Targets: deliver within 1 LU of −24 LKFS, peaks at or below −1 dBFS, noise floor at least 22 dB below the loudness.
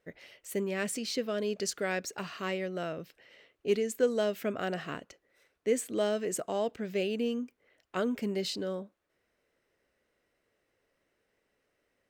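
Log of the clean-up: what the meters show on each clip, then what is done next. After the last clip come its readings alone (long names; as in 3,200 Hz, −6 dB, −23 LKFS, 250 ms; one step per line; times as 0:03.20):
integrated loudness −33.0 LKFS; sample peak −15.5 dBFS; target loudness −24.0 LKFS
→ level +9 dB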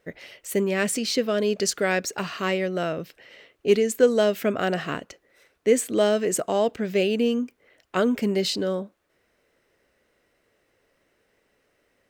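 integrated loudness −24.5 LKFS; sample peak −6.5 dBFS; background noise floor −70 dBFS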